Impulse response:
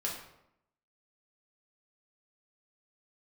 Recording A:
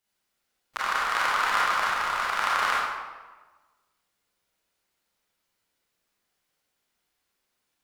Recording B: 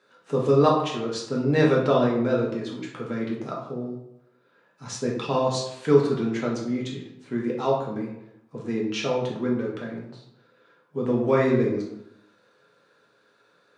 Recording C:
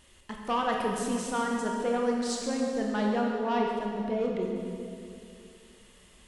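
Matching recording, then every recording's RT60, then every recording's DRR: B; 1.3 s, 0.80 s, 2.5 s; -7.5 dB, -4.0 dB, -0.5 dB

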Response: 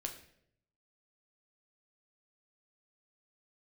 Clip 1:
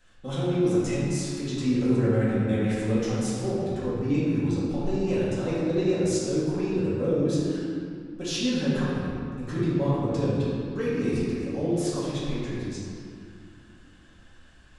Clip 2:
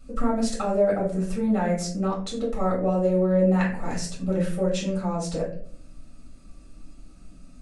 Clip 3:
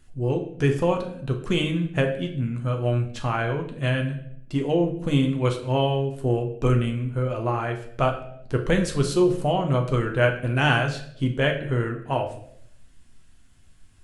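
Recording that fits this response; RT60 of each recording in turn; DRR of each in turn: 3; 2.5 s, 0.55 s, 0.70 s; -10.5 dB, -6.0 dB, 2.5 dB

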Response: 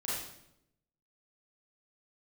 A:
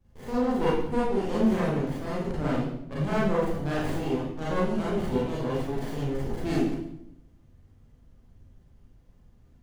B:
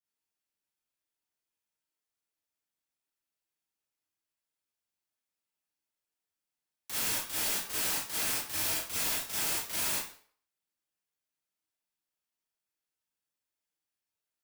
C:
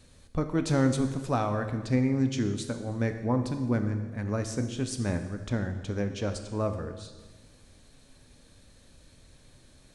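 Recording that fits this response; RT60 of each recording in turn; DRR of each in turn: A; 0.80 s, 0.50 s, 1.4 s; -8.5 dB, -9.0 dB, 6.5 dB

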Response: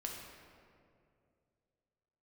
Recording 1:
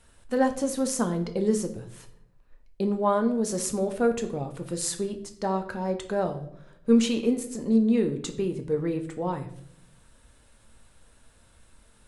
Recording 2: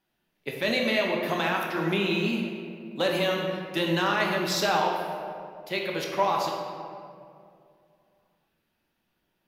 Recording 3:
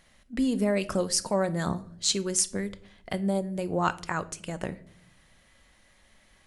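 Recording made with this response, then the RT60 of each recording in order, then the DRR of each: 2; 0.75 s, 2.4 s, no single decay rate; 6.0 dB, -0.5 dB, 12.0 dB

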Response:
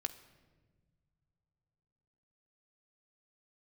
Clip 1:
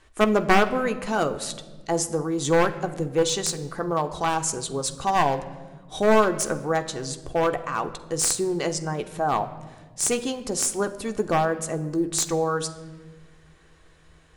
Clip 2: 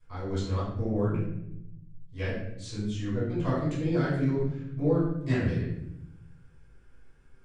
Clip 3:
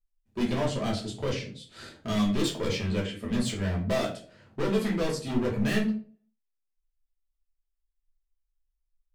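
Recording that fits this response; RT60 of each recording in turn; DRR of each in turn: 1; 1.5 s, 0.80 s, 0.40 s; 6.5 dB, -12.0 dB, -4.5 dB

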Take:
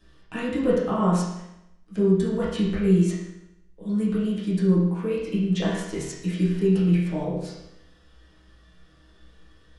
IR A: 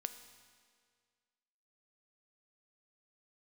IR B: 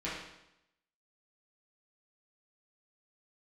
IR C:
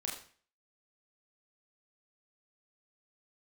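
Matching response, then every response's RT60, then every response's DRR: B; 2.0 s, 0.85 s, 0.45 s; 9.0 dB, -9.5 dB, -2.5 dB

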